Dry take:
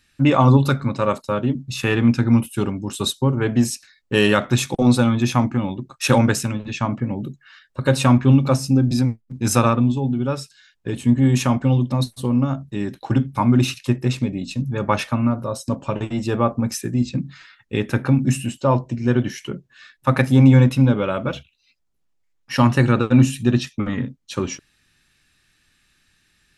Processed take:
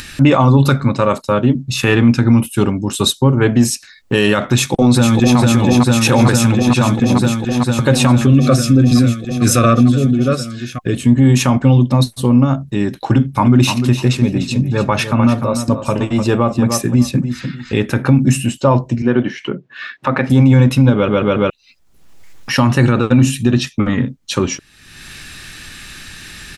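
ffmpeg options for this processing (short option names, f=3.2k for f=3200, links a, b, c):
-filter_complex "[0:a]asplit=2[a][b];[b]afade=t=in:st=4.49:d=0.01,afade=t=out:st=5.38:d=0.01,aecho=0:1:450|900|1350|1800|2250|2700|3150|3600|4050|4500|4950|5400:0.668344|0.568092|0.482878|0.410447|0.34888|0.296548|0.252066|0.214256|0.182117|0.1548|0.13158|0.111843[c];[a][c]amix=inputs=2:normalize=0,asettb=1/sr,asplit=3[d][e][f];[d]atrim=end=8.274[g];[e]atrim=start=8.27:end=11.05,asetpts=PTS-STARTPTS,afade=t=in:d=0.004:c=qsin,afade=t=out:st=2.776:d=0.004:c=qsin,asuperstop=centerf=900:order=20:qfactor=3[h];[f]atrim=start=11.046[i];[g][h]acrossfade=d=0.004:c1=hsin:c2=qsin[j];[j][i]acrossfade=d=0.004:c1=qsin:c2=hsin,asettb=1/sr,asplit=3[k][l][m];[k]atrim=end=13.134[n];[l]atrim=start=13.13:end=17.92,asetpts=PTS-STARTPTS,afade=t=in:d=0.004:c=qsin,afade=t=out:st=4.786:d=0.004:c=qsin,aecho=1:1:299|598:0.316|0.0538,atrim=end_sample=211239[o];[m]atrim=start=17.916[p];[n][o]acrossfade=d=0.004:c1=hsin:c2=qsin[q];[q][p]acrossfade=d=0.004:c1=qsin:c2=hsin,asettb=1/sr,asplit=3[r][s][t];[r]atrim=end=19.024[u];[s]atrim=start=19.02:end=20.3,asetpts=PTS-STARTPTS,afade=t=in:d=0.004:c=qsin,afade=t=out:st=1.276:d=0.004:c=qsin,highpass=190,lowpass=2.8k[v];[t]atrim=start=20.296[w];[u][v]acrossfade=d=0.004:c1=hsin:c2=qsin[x];[x][w]acrossfade=d=0.004:c1=qsin:c2=hsin,asplit=5[y][z][aa][ab][ac];[y]atrim=end=21.082[ad];[z]atrim=start=20.938:end=21.082[ae];[aa]atrim=start=20.938:end=21.082[af];[ab]atrim=start=20.938:end=21.082[ag];[ac]atrim=start=21.498[ah];[ad][ae]acrossfade=d=0.004:c1=hsin:c2=hsin[ai];[ai][af]acrossfade=d=0.004:c1=hsin:c2=hsin[aj];[aj][ag]acrossfade=d=0.004:c1=hsin:c2=hsin[ak];[ak][ah]acrossfade=d=0.004:c1=hsin:c2=hsin,acompressor=mode=upward:threshold=-24dB:ratio=2.5,alimiter=level_in=9dB:limit=-1dB:release=50:level=0:latency=1,volume=-1dB"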